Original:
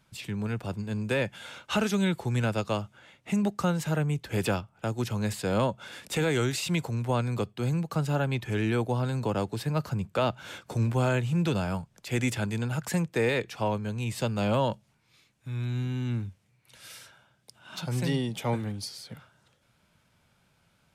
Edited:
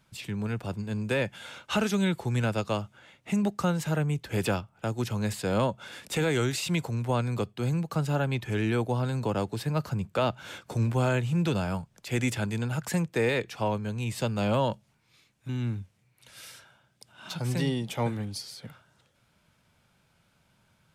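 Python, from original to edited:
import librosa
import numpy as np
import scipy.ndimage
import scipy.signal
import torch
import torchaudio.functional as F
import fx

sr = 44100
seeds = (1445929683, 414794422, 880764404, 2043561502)

y = fx.edit(x, sr, fx.cut(start_s=15.49, length_s=0.47), tone=tone)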